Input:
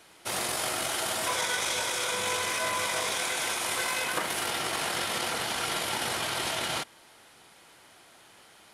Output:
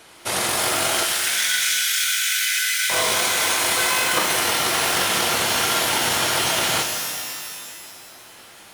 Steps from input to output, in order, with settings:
0:01.03–0:02.90: Butterworth high-pass 1,400 Hz 96 dB per octave
reverb with rising layers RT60 1.9 s, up +12 semitones, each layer −2 dB, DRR 4 dB
level +7.5 dB

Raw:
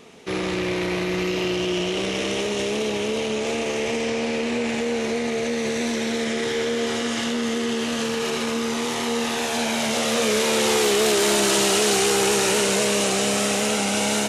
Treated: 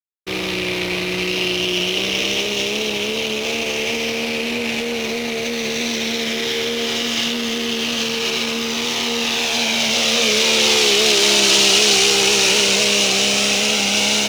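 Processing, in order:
flat-topped bell 3,800 Hz +11 dB
slack as between gear wheels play −24.5 dBFS

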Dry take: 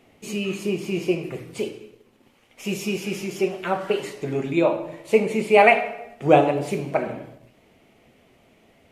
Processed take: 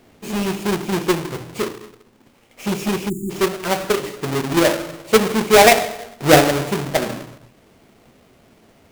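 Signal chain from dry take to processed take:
each half-wave held at its own peak
time-frequency box erased 0:03.09–0:03.30, 390–6,700 Hz

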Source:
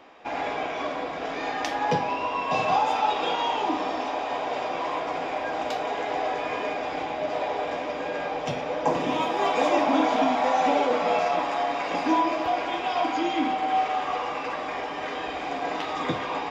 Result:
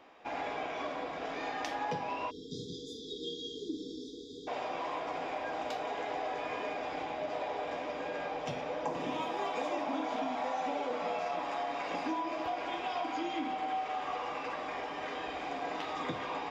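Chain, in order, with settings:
time-frequency box erased 0:02.30–0:04.47, 490–3,200 Hz
downward compressor 4 to 1, threshold −25 dBFS, peak gain reduction 7.5 dB
level −7 dB

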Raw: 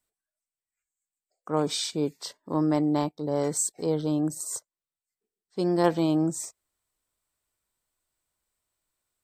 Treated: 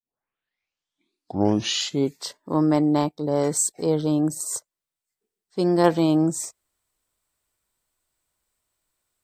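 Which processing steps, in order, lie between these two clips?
turntable start at the beginning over 2.16 s
level +4.5 dB

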